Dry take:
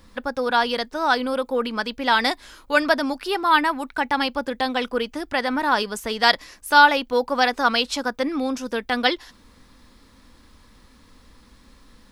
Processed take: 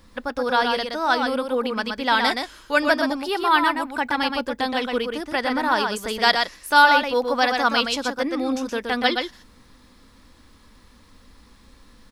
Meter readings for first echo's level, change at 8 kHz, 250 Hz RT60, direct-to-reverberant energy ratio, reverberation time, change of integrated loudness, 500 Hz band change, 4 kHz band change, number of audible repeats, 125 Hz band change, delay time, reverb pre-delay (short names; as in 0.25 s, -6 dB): -5.0 dB, 0.0 dB, none, none, none, 0.0 dB, 0.0 dB, 0.0 dB, 1, n/a, 0.122 s, none